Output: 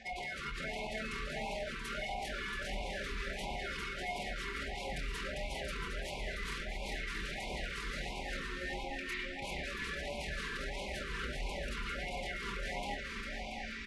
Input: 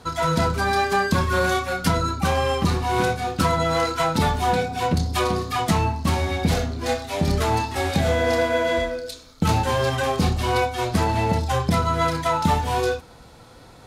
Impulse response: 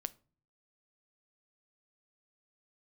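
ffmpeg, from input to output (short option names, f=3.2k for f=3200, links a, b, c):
-filter_complex "[0:a]lowshelf=f=370:t=q:w=1.5:g=-10.5,acrossover=split=130|1100[a][b][c];[a]acompressor=threshold=-38dB:ratio=4[d];[b]acompressor=threshold=-21dB:ratio=4[e];[c]acompressor=threshold=-34dB:ratio=4[f];[d][e][f]amix=inputs=3:normalize=0,firequalizer=gain_entry='entry(110,0);entry(170,-13);entry(240,-17);entry(680,-28);entry(1300,-2);entry(1900,-20);entry(2800,1);entry(5000,-2);entry(7900,0);entry(14000,-2)':delay=0.05:min_phase=1,aeval=exprs='0.015*(abs(mod(val(0)/0.015+3,4)-2)-1)':c=same,highpass=60,aecho=1:1:2.8:0.55,aeval=exprs='val(0)+0.000631*sin(2*PI*410*n/s)':c=same,areverse,acompressor=threshold=-49dB:ratio=8,areverse,asetrate=24046,aresample=44100,atempo=1.83401,aecho=1:1:400|680|876|1013|1109:0.631|0.398|0.251|0.158|0.1,asplit=2[g][h];[1:a]atrim=start_sample=2205,lowpass=4.1k[i];[h][i]afir=irnorm=-1:irlink=0,volume=3dB[j];[g][j]amix=inputs=2:normalize=0,afftfilt=real='re*(1-between(b*sr/1024,670*pow(1500/670,0.5+0.5*sin(2*PI*1.5*pts/sr))/1.41,670*pow(1500/670,0.5+0.5*sin(2*PI*1.5*pts/sr))*1.41))':imag='im*(1-between(b*sr/1024,670*pow(1500/670,0.5+0.5*sin(2*PI*1.5*pts/sr))/1.41,670*pow(1500/670,0.5+0.5*sin(2*PI*1.5*pts/sr))*1.41))':win_size=1024:overlap=0.75,volume=5.5dB"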